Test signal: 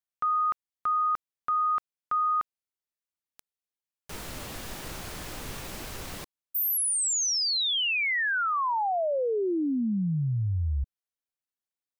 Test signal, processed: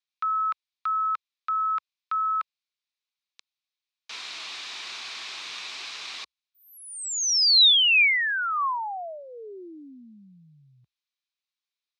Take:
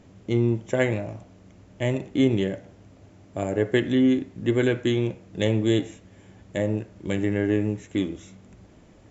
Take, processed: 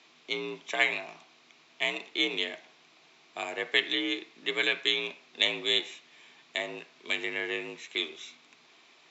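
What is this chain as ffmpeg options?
-af "crystalizer=i=9:c=0,afreqshift=55,highpass=480,equalizer=f=540:t=q:w=4:g=-8,equalizer=f=1.1k:t=q:w=4:g=6,equalizer=f=2.4k:t=q:w=4:g=7,equalizer=f=3.8k:t=q:w=4:g=6,lowpass=f=5k:w=0.5412,lowpass=f=5k:w=1.3066,volume=-8dB"

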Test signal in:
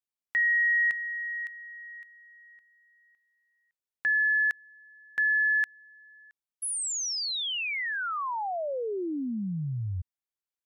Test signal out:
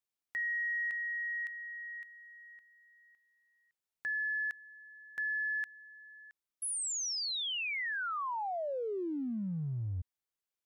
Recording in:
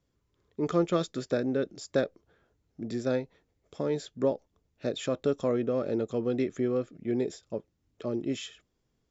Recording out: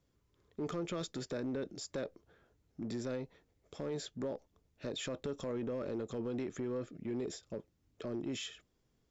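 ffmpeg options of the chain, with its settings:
-af "acompressor=threshold=-34dB:ratio=5:attack=0.12:release=32:knee=6:detection=peak"

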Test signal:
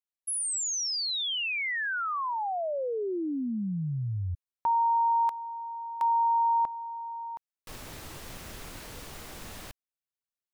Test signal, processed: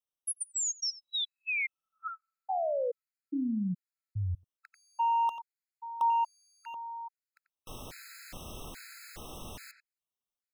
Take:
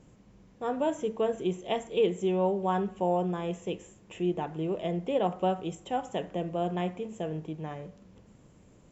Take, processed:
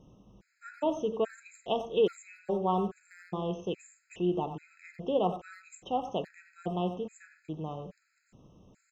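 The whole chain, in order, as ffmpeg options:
-filter_complex "[0:a]asplit=2[a][b];[b]adelay=90,highpass=300,lowpass=3.4k,asoftclip=type=hard:threshold=-25dB,volume=-9dB[c];[a][c]amix=inputs=2:normalize=0,afftfilt=real='re*gt(sin(2*PI*1.2*pts/sr)*(1-2*mod(floor(b*sr/1024/1300),2)),0)':imag='im*gt(sin(2*PI*1.2*pts/sr)*(1-2*mod(floor(b*sr/1024/1300),2)),0)':win_size=1024:overlap=0.75"

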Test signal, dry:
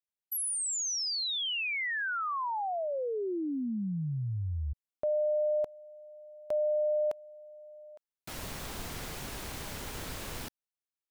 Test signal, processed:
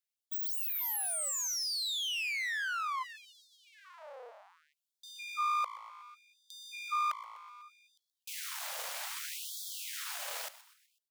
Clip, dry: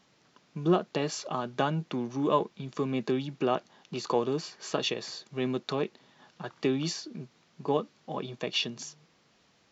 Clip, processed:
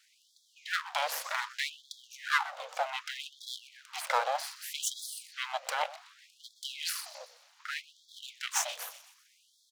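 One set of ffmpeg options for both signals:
-filter_complex "[0:a]asplit=5[a][b][c][d][e];[b]adelay=125,afreqshift=-55,volume=-16.5dB[f];[c]adelay=250,afreqshift=-110,volume=-22.5dB[g];[d]adelay=375,afreqshift=-165,volume=-28.5dB[h];[e]adelay=500,afreqshift=-220,volume=-34.6dB[i];[a][f][g][h][i]amix=inputs=5:normalize=0,aeval=exprs='abs(val(0))':c=same,afftfilt=real='re*gte(b*sr/1024,450*pow(3300/450,0.5+0.5*sin(2*PI*0.65*pts/sr)))':imag='im*gte(b*sr/1024,450*pow(3300/450,0.5+0.5*sin(2*PI*0.65*pts/sr)))':win_size=1024:overlap=0.75,volume=5dB"

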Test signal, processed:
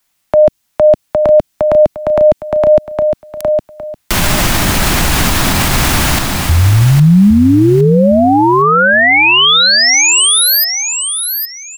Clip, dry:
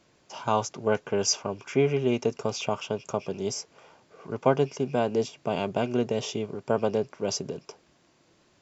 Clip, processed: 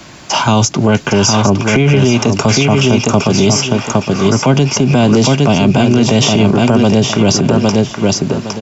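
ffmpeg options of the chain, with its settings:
-filter_complex "[0:a]equalizer=f=460:w=2.5:g=-10,acrossover=split=170|440|2500[a][b][c][d];[a]acompressor=threshold=-34dB:ratio=4[e];[b]acompressor=threshold=-33dB:ratio=4[f];[c]acompressor=threshold=-42dB:ratio=4[g];[d]acompressor=threshold=-42dB:ratio=4[h];[e][f][g][h]amix=inputs=4:normalize=0,asplit=2[i][j];[j]aecho=0:1:811|1622|2433:0.501|0.12|0.0289[k];[i][k]amix=inputs=2:normalize=0,alimiter=level_in=30dB:limit=-1dB:release=50:level=0:latency=1,volume=-1dB"

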